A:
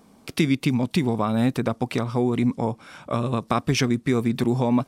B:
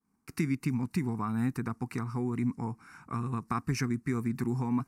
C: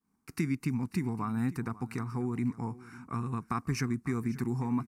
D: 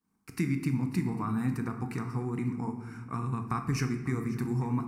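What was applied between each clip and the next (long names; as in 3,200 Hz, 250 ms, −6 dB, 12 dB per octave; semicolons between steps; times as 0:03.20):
phaser with its sweep stopped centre 1,400 Hz, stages 4; downward expander −46 dBFS; level −6.5 dB
single-tap delay 543 ms −18.5 dB; level −1 dB
convolution reverb RT60 1.1 s, pre-delay 6 ms, DRR 5.5 dB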